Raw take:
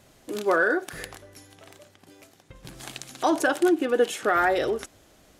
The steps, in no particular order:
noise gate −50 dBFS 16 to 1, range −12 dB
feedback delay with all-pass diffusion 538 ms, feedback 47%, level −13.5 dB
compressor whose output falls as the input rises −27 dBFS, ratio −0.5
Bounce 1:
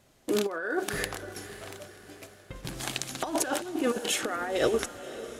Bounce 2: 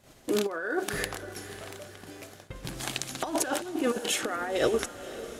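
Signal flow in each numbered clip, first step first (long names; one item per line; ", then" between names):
noise gate, then compressor whose output falls as the input rises, then feedback delay with all-pass diffusion
compressor whose output falls as the input rises, then feedback delay with all-pass diffusion, then noise gate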